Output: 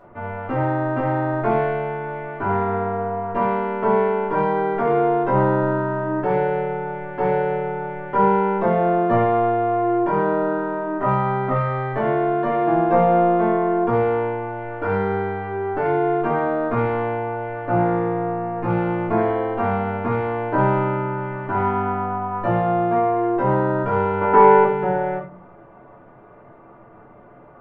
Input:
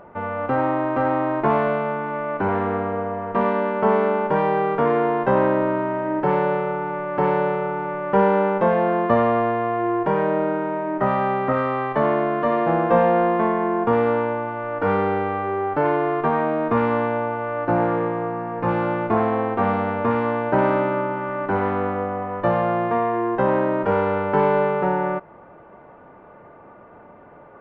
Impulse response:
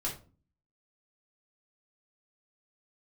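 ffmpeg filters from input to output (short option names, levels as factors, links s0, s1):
-filter_complex "[0:a]asettb=1/sr,asplit=3[s0][s1][s2];[s0]atrim=end=24.214[s3];[s1]atrim=start=24.21:end=24.64,asetpts=PTS-STARTPTS,afade=t=in:d=0.004:c=qsin,afade=t=out:st=0.426:d=0.004:c=qsin,equalizer=f=125:t=o:w=1:g=-10,equalizer=f=250:t=o:w=1:g=7,equalizer=f=500:t=o:w=1:g=5,equalizer=f=1000:t=o:w=1:g=7,equalizer=f=2000:t=o:w=1:g=5[s4];[s2]atrim=start=24.636[s5];[s3][s4]acrossfade=d=0.004:c1=hsin:c2=qsin[s6];[s6][s5]acrossfade=d=0.004:c1=qsin:c2=hsin[s7];[1:a]atrim=start_sample=2205[s8];[s7][s8]afir=irnorm=-1:irlink=0,volume=0.596"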